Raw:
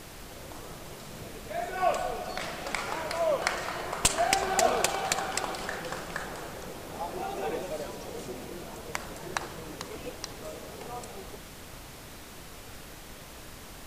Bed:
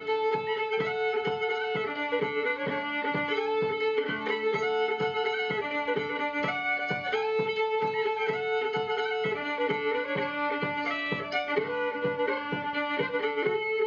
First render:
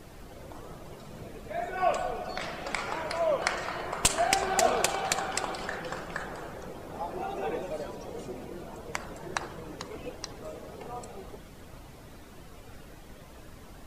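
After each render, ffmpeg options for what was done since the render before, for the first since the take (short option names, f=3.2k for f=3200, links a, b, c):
-af "afftdn=nr=10:nf=-46"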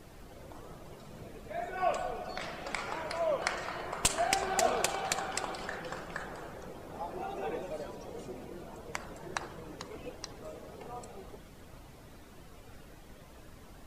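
-af "volume=-4dB"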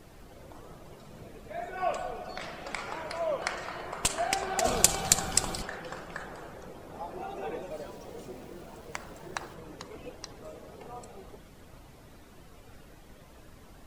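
-filter_complex "[0:a]asplit=3[a][b][c];[a]afade=t=out:st=4.64:d=0.02[d];[b]bass=f=250:g=13,treble=f=4k:g=15,afade=t=in:st=4.64:d=0.02,afade=t=out:st=5.61:d=0.02[e];[c]afade=t=in:st=5.61:d=0.02[f];[d][e][f]amix=inputs=3:normalize=0,asettb=1/sr,asplit=3[g][h][i];[g]atrim=end=7.714[j];[h]atrim=start=7.71:end=9.54,asetpts=PTS-STARTPTS,afade=t=in:d=0.004:c=qsin,afade=t=out:st=1.826:d=0.004:c=qsin,aeval=exprs='val(0)*gte(abs(val(0)),0.00266)':c=same[k];[i]atrim=start=9.536[l];[j][k]acrossfade=d=0.004:c1=hsin:c2=qsin[m];[m][l]acrossfade=d=0.004:c1=qsin:c2=hsin"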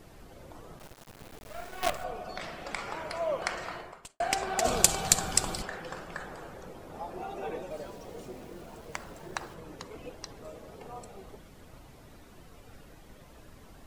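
-filter_complex "[0:a]asettb=1/sr,asplit=3[a][b][c];[a]atrim=end=0.794[d];[b]atrim=start=0.79:end=2.04,asetpts=PTS-STARTPTS,afade=t=in:d=0.004:c=qsin,afade=t=out:st=1.246:d=0.004:c=qsin,acrusher=bits=5:dc=4:mix=0:aa=0.000001[e];[c]atrim=start=2.036[f];[d][e]acrossfade=d=0.004:c1=hsin:c2=qsin[g];[g][f]acrossfade=d=0.004:c1=qsin:c2=hsin,asplit=2[h][i];[h]atrim=end=4.2,asetpts=PTS-STARTPTS,afade=t=out:st=3.73:d=0.47:c=qua[j];[i]atrim=start=4.2,asetpts=PTS-STARTPTS,afade=t=in:d=0.004:c=hsin[k];[j][k]concat=n=2:v=0:a=1"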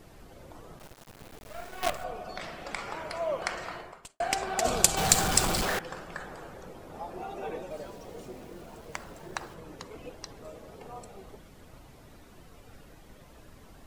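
-filter_complex "[0:a]asettb=1/sr,asplit=3[a][b][c];[a]atrim=end=4.974[d];[b]atrim=start=4.97:end=5.79,asetpts=PTS-STARTPTS,afade=t=in:d=0.004:c=qsin,afade=t=out:st=0.816:d=0.004:c=qsin,aeval=exprs='val(0)+0.5*0.0531*sgn(val(0))':c=same[e];[c]atrim=start=5.786[f];[d][e]acrossfade=d=0.004:c1=hsin:c2=qsin[g];[g][f]acrossfade=d=0.004:c1=qsin:c2=hsin"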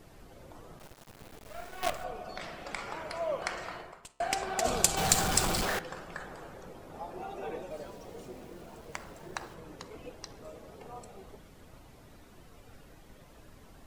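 -filter_complex "[0:a]asplit=2[a][b];[b]volume=20dB,asoftclip=hard,volume=-20dB,volume=-9.5dB[c];[a][c]amix=inputs=2:normalize=0,flanger=delay=7.2:depth=9.1:regen=-89:speed=0.15:shape=sinusoidal"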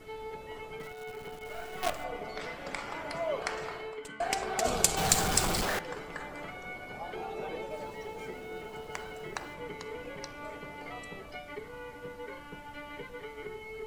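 -filter_complex "[1:a]volume=-14.5dB[a];[0:a][a]amix=inputs=2:normalize=0"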